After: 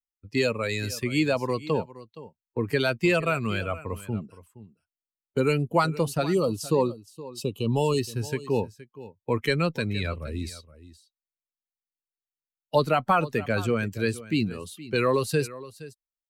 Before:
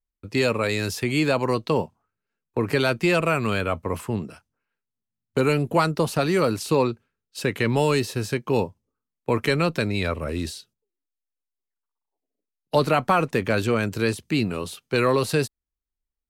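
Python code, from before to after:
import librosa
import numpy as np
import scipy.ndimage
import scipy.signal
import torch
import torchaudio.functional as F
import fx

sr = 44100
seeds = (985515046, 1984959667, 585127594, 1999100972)

y = fx.bin_expand(x, sr, power=1.5)
y = fx.ellip_bandstop(y, sr, low_hz=1200.0, high_hz=2700.0, order=3, stop_db=40, at=(6.33, 7.97), fade=0.02)
y = y + 10.0 ** (-17.0 / 20.0) * np.pad(y, (int(469 * sr / 1000.0), 0))[:len(y)]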